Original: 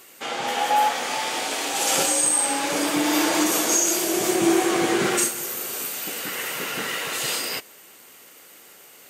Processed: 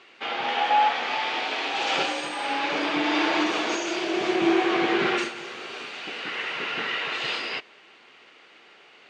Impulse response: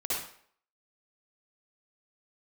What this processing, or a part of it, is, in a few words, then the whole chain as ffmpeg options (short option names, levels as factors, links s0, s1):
kitchen radio: -af "highpass=170,equalizer=f=190:t=q:w=4:g=-5,equalizer=f=280:t=q:w=4:g=-4,equalizer=f=530:t=q:w=4:g=-5,equalizer=f=2500:t=q:w=4:g=3,lowpass=f=4000:w=0.5412,lowpass=f=4000:w=1.3066"